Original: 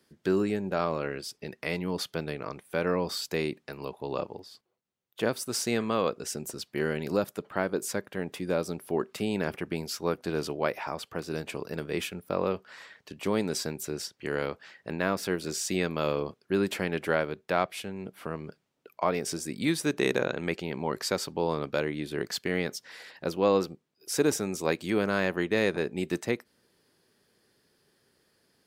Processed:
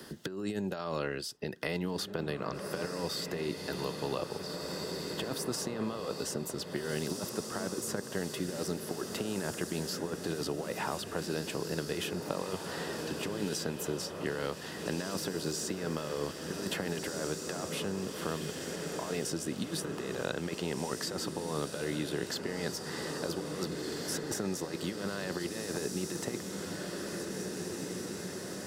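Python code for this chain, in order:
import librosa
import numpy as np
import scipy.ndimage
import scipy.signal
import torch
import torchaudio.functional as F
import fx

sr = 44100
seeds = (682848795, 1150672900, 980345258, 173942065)

p1 = fx.over_compress(x, sr, threshold_db=-31.0, ratio=-0.5)
p2 = fx.notch(p1, sr, hz=2300.0, q=5.4)
p3 = p2 + fx.echo_diffused(p2, sr, ms=1770, feedback_pct=58, wet_db=-7.5, dry=0)
p4 = fx.band_squash(p3, sr, depth_pct=70)
y = p4 * 10.0 ** (-3.5 / 20.0)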